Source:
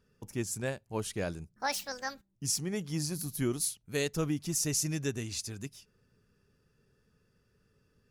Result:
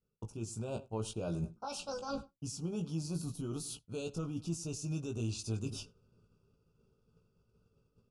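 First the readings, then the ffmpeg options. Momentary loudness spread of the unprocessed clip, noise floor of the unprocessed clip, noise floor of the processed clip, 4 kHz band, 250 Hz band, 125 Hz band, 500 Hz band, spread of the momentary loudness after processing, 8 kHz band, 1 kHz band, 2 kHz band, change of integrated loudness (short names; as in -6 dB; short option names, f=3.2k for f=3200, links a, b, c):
8 LU, -72 dBFS, -78 dBFS, -8.0 dB, -3.5 dB, -1.5 dB, -4.5 dB, 5 LU, -11.5 dB, -5.5 dB, -14.5 dB, -6.0 dB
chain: -filter_complex "[0:a]alimiter=level_in=4.5dB:limit=-24dB:level=0:latency=1:release=74,volume=-4.5dB,asplit=2[a][b];[b]adelay=98,lowpass=f=3.4k:p=1,volume=-19.5dB,asplit=2[c][d];[d]adelay=98,lowpass=f=3.4k:p=1,volume=0.28[e];[a][c][e]amix=inputs=3:normalize=0,aresample=22050,aresample=44100,areverse,acompressor=threshold=-49dB:ratio=16,areverse,highshelf=f=2.1k:g=-8.5,asplit=2[f][g];[g]adelay=18,volume=-5dB[h];[f][h]amix=inputs=2:normalize=0,agate=range=-33dB:threshold=-57dB:ratio=3:detection=peak,dynaudnorm=f=120:g=9:m=3.5dB,asuperstop=centerf=1900:order=12:qfactor=2,equalizer=f=280:t=o:w=0.44:g=-2,volume=11.5dB"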